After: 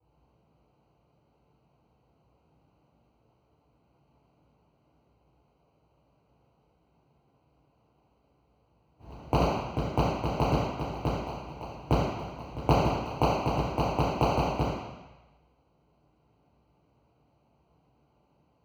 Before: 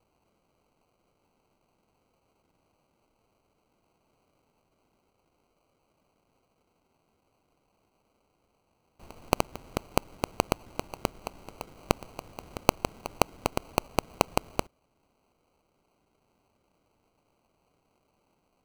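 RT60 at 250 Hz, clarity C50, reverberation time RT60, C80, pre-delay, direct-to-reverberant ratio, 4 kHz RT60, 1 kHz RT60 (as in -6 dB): 0.90 s, -2.0 dB, 1.1 s, 0.5 dB, 3 ms, -11.0 dB, 1.1 s, 1.2 s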